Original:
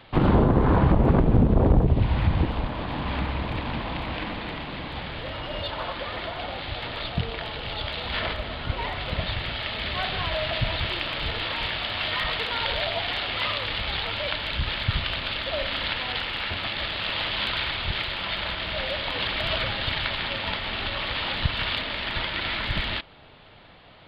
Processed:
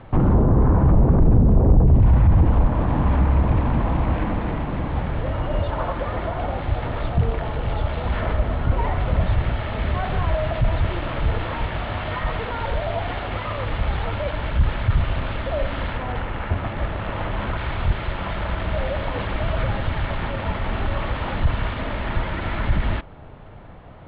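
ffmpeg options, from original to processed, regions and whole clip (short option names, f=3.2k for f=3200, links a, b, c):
-filter_complex "[0:a]asettb=1/sr,asplit=3[a][b][c];[a]atrim=end=15.974[d];[b]atrim=start=15.97:end=17.58,asetpts=PTS-STARTPTS,afade=t=in:d=0.004:c=qsin,afade=t=out:st=1.606:d=0.004:c=qsin,lowpass=f=1.9k:p=1,asoftclip=type=hard:threshold=-22dB[e];[c]atrim=start=17.576[f];[d][e]acrossfade=d=0.004:c1=hsin:c2=qsin[g];[g][f]acrossfade=d=0.004:c1=qsin:c2=hsin,alimiter=limit=-21dB:level=0:latency=1:release=12,lowpass=1.3k,lowshelf=f=150:g=9.5,volume=6.5dB"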